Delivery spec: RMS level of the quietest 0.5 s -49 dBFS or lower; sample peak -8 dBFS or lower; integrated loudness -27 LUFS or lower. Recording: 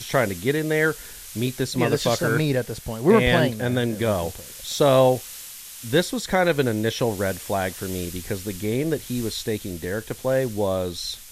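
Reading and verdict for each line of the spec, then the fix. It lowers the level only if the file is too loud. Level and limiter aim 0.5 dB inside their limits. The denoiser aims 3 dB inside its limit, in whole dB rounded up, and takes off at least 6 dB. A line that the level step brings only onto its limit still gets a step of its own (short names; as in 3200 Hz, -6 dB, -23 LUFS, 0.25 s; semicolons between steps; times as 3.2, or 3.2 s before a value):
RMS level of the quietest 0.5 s -39 dBFS: fail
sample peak -3.5 dBFS: fail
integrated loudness -23.0 LUFS: fail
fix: denoiser 9 dB, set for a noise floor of -39 dBFS; gain -4.5 dB; limiter -8.5 dBFS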